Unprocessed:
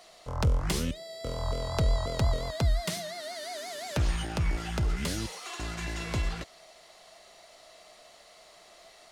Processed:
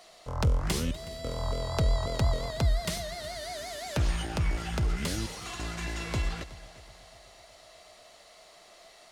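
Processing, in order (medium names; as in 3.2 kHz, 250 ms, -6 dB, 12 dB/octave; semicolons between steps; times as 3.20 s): multi-head delay 123 ms, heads second and third, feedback 53%, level -19 dB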